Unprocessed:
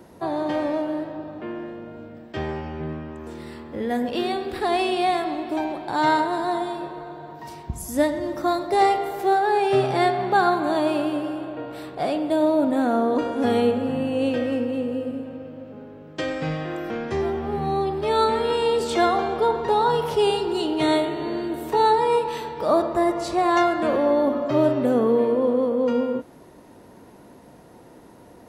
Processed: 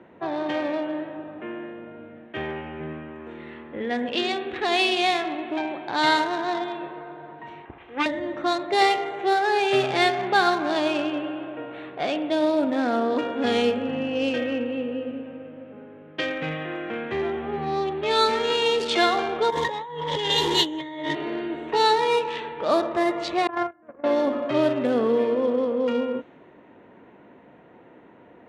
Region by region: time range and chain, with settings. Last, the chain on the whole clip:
7.65–8.06 minimum comb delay 2.5 ms + LPF 3300 Hz 24 dB/oct + low shelf 210 Hz -10.5 dB
19.5–21.15 delta modulation 64 kbps, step -36 dBFS + ripple EQ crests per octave 1.1, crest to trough 16 dB + negative-ratio compressor -27 dBFS
23.47–24.04 LPF 1700 Hz 24 dB/oct + gate -18 dBFS, range -31 dB + bell 70 Hz +9.5 dB 1.7 oct
whole clip: Wiener smoothing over 9 samples; weighting filter D; low-pass opened by the level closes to 2200 Hz, open at -15 dBFS; gain -1.5 dB

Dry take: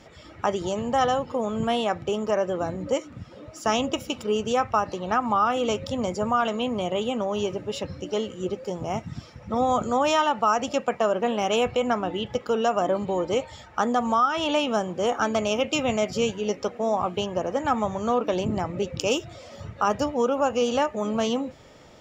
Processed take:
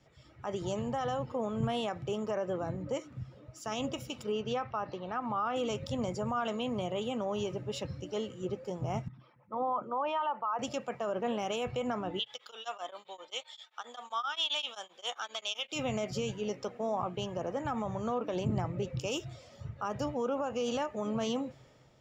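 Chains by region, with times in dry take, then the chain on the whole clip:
4.32–5.56 LPF 5000 Hz 24 dB/oct + low shelf 140 Hz -6.5 dB
9.08–10.59 formant sharpening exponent 1.5 + speaker cabinet 350–3500 Hz, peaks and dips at 430 Hz -7 dB, 680 Hz -4 dB, 1000 Hz +7 dB
12.19–15.72 HPF 890 Hz + bell 3500 Hz +14.5 dB 0.38 oct + beating tremolo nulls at 7.6 Hz
whole clip: limiter -18 dBFS; bell 130 Hz +13.5 dB 0.25 oct; three-band expander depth 40%; gain -6.5 dB

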